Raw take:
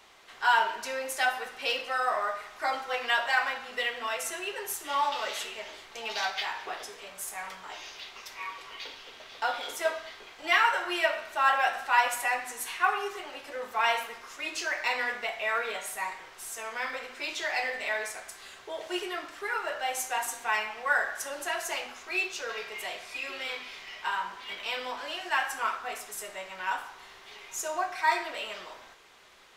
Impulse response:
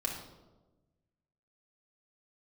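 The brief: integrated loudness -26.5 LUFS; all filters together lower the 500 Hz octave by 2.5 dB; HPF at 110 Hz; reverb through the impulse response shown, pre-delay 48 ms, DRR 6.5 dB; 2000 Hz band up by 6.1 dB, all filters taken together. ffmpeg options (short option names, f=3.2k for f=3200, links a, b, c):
-filter_complex "[0:a]highpass=110,equalizer=f=500:t=o:g=-4,equalizer=f=2k:t=o:g=8,asplit=2[a][b];[1:a]atrim=start_sample=2205,adelay=48[c];[b][c]afir=irnorm=-1:irlink=0,volume=-10dB[d];[a][d]amix=inputs=2:normalize=0,volume=-1dB"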